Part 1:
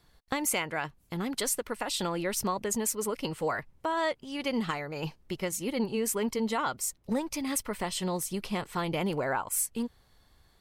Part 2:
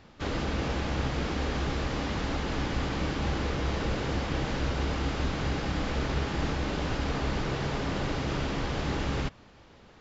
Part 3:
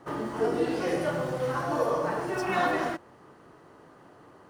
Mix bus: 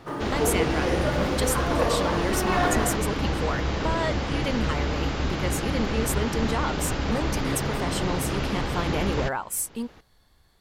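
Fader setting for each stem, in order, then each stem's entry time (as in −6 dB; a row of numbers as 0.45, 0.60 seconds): +1.0, +3.0, +1.5 decibels; 0.00, 0.00, 0.00 seconds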